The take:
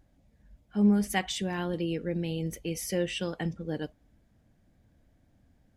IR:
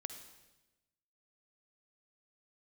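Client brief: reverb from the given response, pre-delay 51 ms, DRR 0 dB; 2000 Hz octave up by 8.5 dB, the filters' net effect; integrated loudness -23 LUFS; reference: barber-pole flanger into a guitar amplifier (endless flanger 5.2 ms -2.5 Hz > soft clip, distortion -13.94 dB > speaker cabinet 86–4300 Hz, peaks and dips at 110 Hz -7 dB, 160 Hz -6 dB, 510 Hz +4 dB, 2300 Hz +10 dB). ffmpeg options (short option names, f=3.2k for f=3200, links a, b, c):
-filter_complex "[0:a]equalizer=f=2k:t=o:g=5.5,asplit=2[a][b];[1:a]atrim=start_sample=2205,adelay=51[c];[b][c]afir=irnorm=-1:irlink=0,volume=2.5dB[d];[a][d]amix=inputs=2:normalize=0,asplit=2[e][f];[f]adelay=5.2,afreqshift=-2.5[g];[e][g]amix=inputs=2:normalize=1,asoftclip=threshold=-23.5dB,highpass=86,equalizer=f=110:t=q:w=4:g=-7,equalizer=f=160:t=q:w=4:g=-6,equalizer=f=510:t=q:w=4:g=4,equalizer=f=2.3k:t=q:w=4:g=10,lowpass=f=4.3k:w=0.5412,lowpass=f=4.3k:w=1.3066,volume=9.5dB"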